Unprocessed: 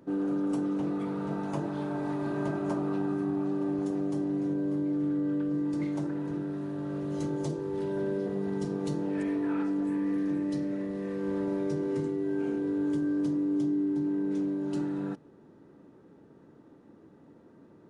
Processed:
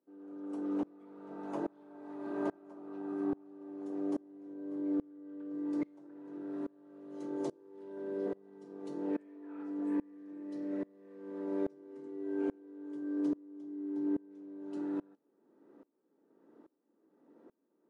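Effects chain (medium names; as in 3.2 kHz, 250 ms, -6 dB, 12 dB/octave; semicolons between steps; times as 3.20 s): high-pass 250 Hz 24 dB/octave; treble shelf 2 kHz -9.5 dB; sawtooth tremolo in dB swelling 1.2 Hz, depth 28 dB; trim +1 dB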